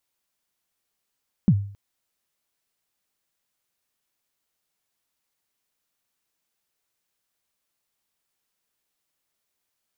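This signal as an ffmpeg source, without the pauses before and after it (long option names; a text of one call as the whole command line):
ffmpeg -f lavfi -i "aevalsrc='0.316*pow(10,-3*t/0.49)*sin(2*PI*(220*0.06/log(100/220)*(exp(log(100/220)*min(t,0.06)/0.06)-1)+100*max(t-0.06,0)))':duration=0.27:sample_rate=44100" out.wav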